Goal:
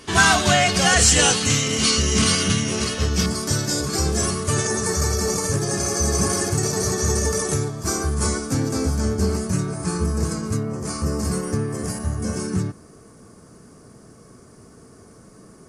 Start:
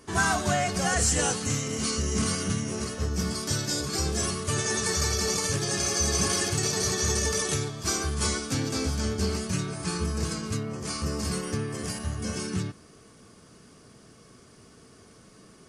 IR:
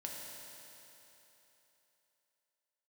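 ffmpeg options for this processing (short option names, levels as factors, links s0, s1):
-af "asetnsamples=n=441:p=0,asendcmd='3.26 equalizer g -5.5;4.67 equalizer g -14',equalizer=f=3200:w=1:g=9,volume=2.24"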